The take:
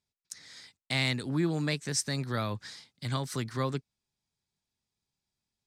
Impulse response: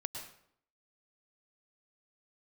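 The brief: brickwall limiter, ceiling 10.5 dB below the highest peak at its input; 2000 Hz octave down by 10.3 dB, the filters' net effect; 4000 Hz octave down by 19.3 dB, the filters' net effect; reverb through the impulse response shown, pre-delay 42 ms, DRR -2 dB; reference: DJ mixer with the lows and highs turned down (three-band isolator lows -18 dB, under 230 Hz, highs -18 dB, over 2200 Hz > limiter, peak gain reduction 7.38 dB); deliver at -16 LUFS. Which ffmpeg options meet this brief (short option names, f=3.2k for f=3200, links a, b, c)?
-filter_complex "[0:a]equalizer=f=2k:t=o:g=-6,equalizer=f=4k:t=o:g=-5.5,alimiter=level_in=6dB:limit=-24dB:level=0:latency=1,volume=-6dB,asplit=2[a][b];[1:a]atrim=start_sample=2205,adelay=42[c];[b][c]afir=irnorm=-1:irlink=0,volume=2dB[d];[a][d]amix=inputs=2:normalize=0,acrossover=split=230 2200:gain=0.126 1 0.126[e][f][g];[e][f][g]amix=inputs=3:normalize=0,volume=28dB,alimiter=limit=-6.5dB:level=0:latency=1"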